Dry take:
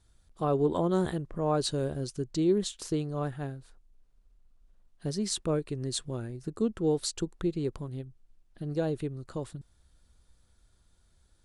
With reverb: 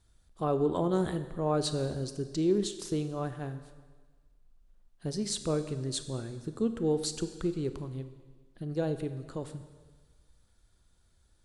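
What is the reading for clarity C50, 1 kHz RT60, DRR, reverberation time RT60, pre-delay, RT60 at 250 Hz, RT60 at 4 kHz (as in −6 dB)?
11.0 dB, 1.4 s, 9.5 dB, 1.4 s, 26 ms, 1.4 s, 1.4 s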